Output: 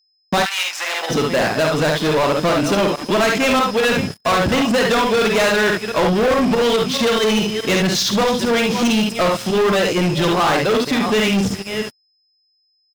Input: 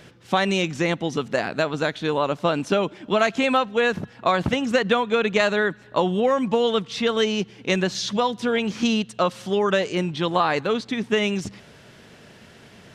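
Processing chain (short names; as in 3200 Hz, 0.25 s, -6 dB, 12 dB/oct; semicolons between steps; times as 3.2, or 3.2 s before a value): reverse delay 0.37 s, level -14 dB; pump 142 bpm, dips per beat 2, -15 dB, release 75 ms; on a send: early reflections 51 ms -7 dB, 71 ms -7.5 dB; on the sum: gate -36 dBFS, range -43 dB; in parallel at -10.5 dB: crossover distortion -36.5 dBFS; on the sum: whine 5100 Hz -44 dBFS; sample leveller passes 5; 0.44–1.09 HPF 1200 Hz -> 560 Hz 24 dB/oct; gain -8 dB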